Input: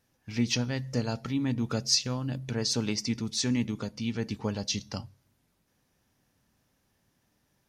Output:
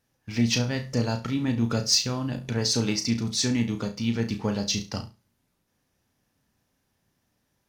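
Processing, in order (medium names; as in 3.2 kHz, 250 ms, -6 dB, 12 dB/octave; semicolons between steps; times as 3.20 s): waveshaping leveller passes 1; flutter echo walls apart 5.9 m, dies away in 0.27 s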